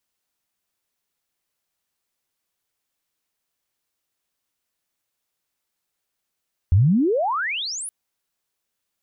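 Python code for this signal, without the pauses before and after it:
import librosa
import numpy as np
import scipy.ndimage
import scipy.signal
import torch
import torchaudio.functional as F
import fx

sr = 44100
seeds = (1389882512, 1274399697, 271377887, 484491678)

y = fx.chirp(sr, length_s=1.17, from_hz=82.0, to_hz=11000.0, law='logarithmic', from_db=-11.0, to_db=-28.5)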